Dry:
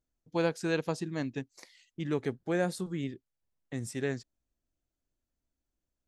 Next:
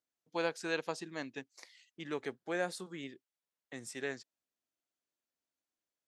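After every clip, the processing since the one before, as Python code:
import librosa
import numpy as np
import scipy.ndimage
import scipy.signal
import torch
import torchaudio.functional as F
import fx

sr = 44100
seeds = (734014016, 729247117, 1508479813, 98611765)

y = fx.weighting(x, sr, curve='A')
y = F.gain(torch.from_numpy(y), -2.0).numpy()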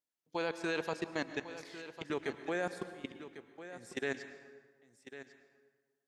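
y = fx.level_steps(x, sr, step_db=21)
y = y + 10.0 ** (-13.0 / 20.0) * np.pad(y, (int(1099 * sr / 1000.0), 0))[:len(y)]
y = fx.rev_plate(y, sr, seeds[0], rt60_s=1.5, hf_ratio=0.65, predelay_ms=95, drr_db=11.0)
y = F.gain(torch.from_numpy(y), 8.0).numpy()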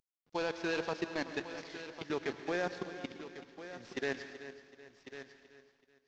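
y = fx.cvsd(x, sr, bps=32000)
y = fx.echo_feedback(y, sr, ms=379, feedback_pct=41, wet_db=-14.0)
y = F.gain(torch.from_numpy(y), 1.0).numpy()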